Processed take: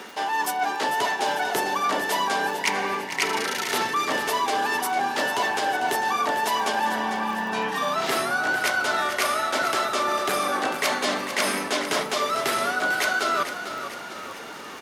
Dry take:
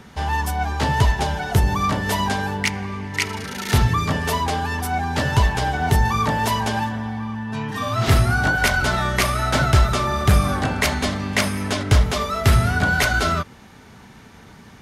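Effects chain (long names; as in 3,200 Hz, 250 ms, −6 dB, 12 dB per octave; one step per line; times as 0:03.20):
high-pass filter 310 Hz 24 dB per octave
reversed playback
downward compressor 6 to 1, threshold −31 dBFS, peak gain reduction 15.5 dB
reversed playback
surface crackle 62 per second −42 dBFS
on a send: echo with shifted repeats 448 ms, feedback 52%, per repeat −31 Hz, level −10 dB
on the sum: steady tone 2,800 Hz −60 dBFS
level +8.5 dB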